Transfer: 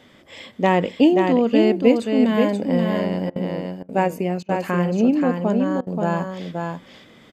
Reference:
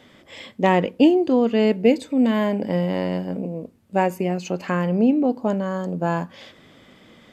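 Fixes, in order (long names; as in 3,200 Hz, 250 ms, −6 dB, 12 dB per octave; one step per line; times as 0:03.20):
repair the gap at 0:03.30/0:03.83/0:04.43/0:05.81, 57 ms
echo removal 530 ms −4.5 dB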